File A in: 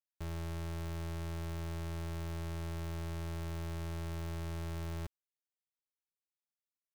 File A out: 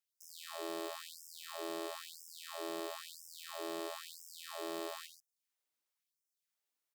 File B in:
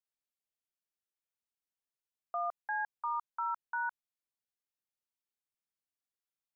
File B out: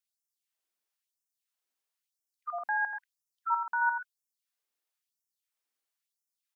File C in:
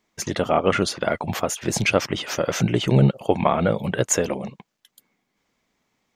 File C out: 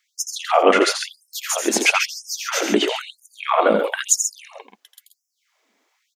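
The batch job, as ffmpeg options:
-af "aecho=1:1:84|123|134:0.447|0.141|0.376,afftfilt=real='re*gte(b*sr/1024,200*pow(5200/200,0.5+0.5*sin(2*PI*1*pts/sr)))':imag='im*gte(b*sr/1024,200*pow(5200/200,0.5+0.5*sin(2*PI*1*pts/sr)))':win_size=1024:overlap=0.75,volume=1.78"

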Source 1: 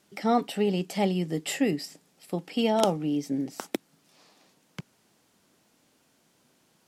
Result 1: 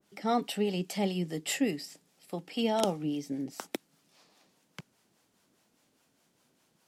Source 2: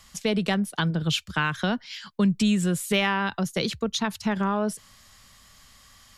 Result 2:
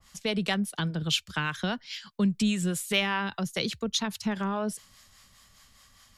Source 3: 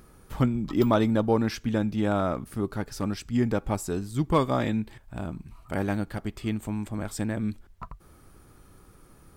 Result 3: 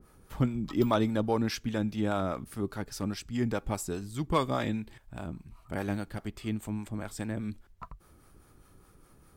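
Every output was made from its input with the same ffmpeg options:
-filter_complex "[0:a]acrossover=split=500[s0][s1];[s0]aeval=exprs='val(0)*(1-0.5/2+0.5/2*cos(2*PI*4.9*n/s))':c=same[s2];[s1]aeval=exprs='val(0)*(1-0.5/2-0.5/2*cos(2*PI*4.9*n/s))':c=same[s3];[s2][s3]amix=inputs=2:normalize=0,adynamicequalizer=threshold=0.01:dfrequency=1900:dqfactor=0.7:tfrequency=1900:tqfactor=0.7:attack=5:release=100:ratio=0.375:range=2:mode=boostabove:tftype=highshelf,volume=0.75"

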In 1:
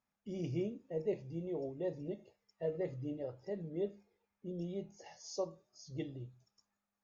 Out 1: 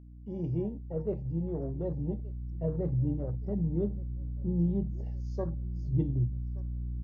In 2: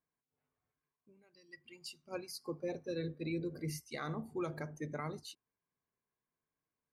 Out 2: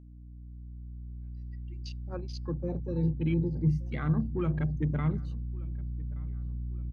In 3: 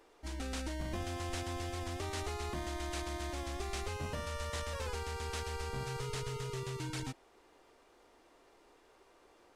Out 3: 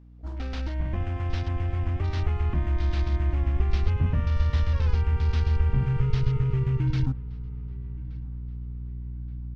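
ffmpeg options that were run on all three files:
-filter_complex "[0:a]afwtdn=0.00355,lowpass=5000,aeval=exprs='val(0)+0.00224*(sin(2*PI*60*n/s)+sin(2*PI*2*60*n/s)/2+sin(2*PI*3*60*n/s)/3+sin(2*PI*4*60*n/s)/4+sin(2*PI*5*60*n/s)/5)':c=same,asubboost=boost=8:cutoff=190,asplit=2[s0][s1];[s1]adelay=1174,lowpass=f=3400:p=1,volume=0.0708,asplit=2[s2][s3];[s3]adelay=1174,lowpass=f=3400:p=1,volume=0.46,asplit=2[s4][s5];[s5]adelay=1174,lowpass=f=3400:p=1,volume=0.46[s6];[s0][s2][s4][s6]amix=inputs=4:normalize=0,volume=1.58"

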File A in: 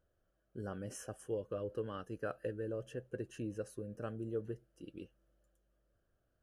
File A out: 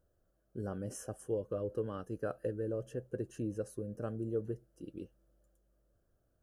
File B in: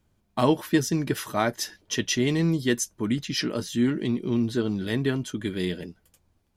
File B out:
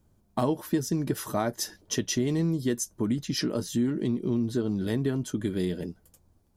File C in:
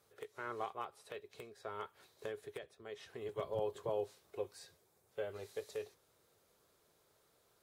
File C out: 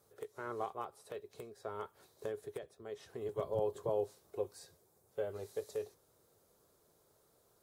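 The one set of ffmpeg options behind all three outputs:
-af "equalizer=f=2500:w=0.71:g=-10,acompressor=threshold=0.0355:ratio=3,volume=1.58"

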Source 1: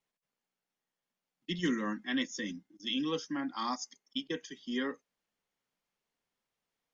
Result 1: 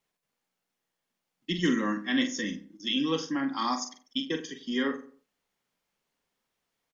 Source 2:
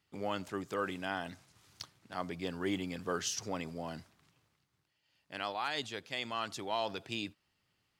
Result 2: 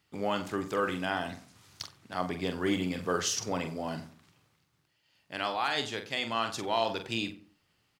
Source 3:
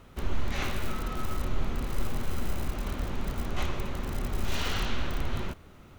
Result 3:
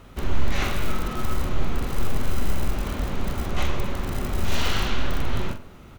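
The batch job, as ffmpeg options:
-filter_complex "[0:a]asplit=2[s0][s1];[s1]adelay=44,volume=0.398[s2];[s0][s2]amix=inputs=2:normalize=0,asplit=2[s3][s4];[s4]adelay=92,lowpass=f=1200:p=1,volume=0.224,asplit=2[s5][s6];[s6]adelay=92,lowpass=f=1200:p=1,volume=0.34,asplit=2[s7][s8];[s8]adelay=92,lowpass=f=1200:p=1,volume=0.34[s9];[s5][s7][s9]amix=inputs=3:normalize=0[s10];[s3][s10]amix=inputs=2:normalize=0,volume=1.78"

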